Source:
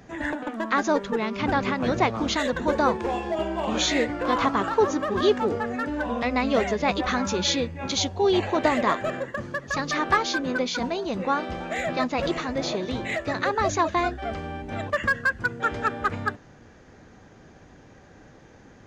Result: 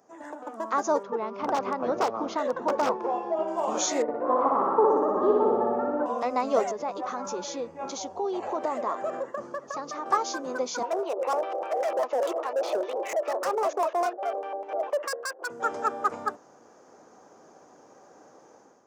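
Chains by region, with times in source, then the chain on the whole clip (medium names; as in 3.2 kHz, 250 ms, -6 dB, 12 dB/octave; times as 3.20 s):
1.03–3.48 s: integer overflow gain 14 dB + distance through air 220 m
4.02–6.06 s: low-pass 1.1 kHz + flutter echo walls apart 10.3 m, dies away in 1.5 s
6.71–10.06 s: compression 3:1, threshold -27 dBFS + treble shelf 6.7 kHz -12 dB
10.83–15.50 s: steep high-pass 360 Hz + LFO low-pass square 5 Hz 590–2800 Hz + hard clipper -23.5 dBFS
whole clip: high-pass 450 Hz 12 dB/octave; level rider gain up to 10 dB; high-order bell 2.6 kHz -14 dB; trim -7 dB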